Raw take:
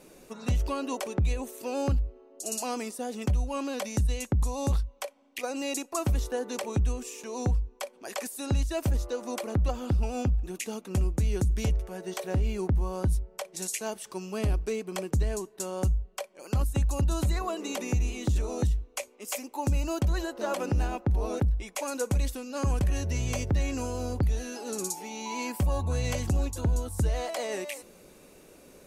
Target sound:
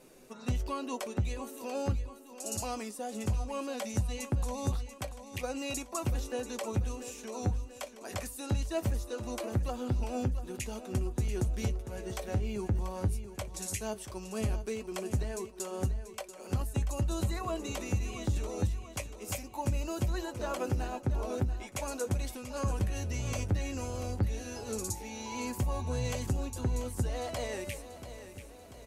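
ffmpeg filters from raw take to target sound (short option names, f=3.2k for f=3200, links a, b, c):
-filter_complex "[0:a]flanger=delay=7.8:depth=1.9:regen=56:speed=0.19:shape=sinusoidal,asplit=2[a][b];[b]aecho=0:1:687|1374|2061|2748|3435:0.251|0.131|0.0679|0.0353|0.0184[c];[a][c]amix=inputs=2:normalize=0"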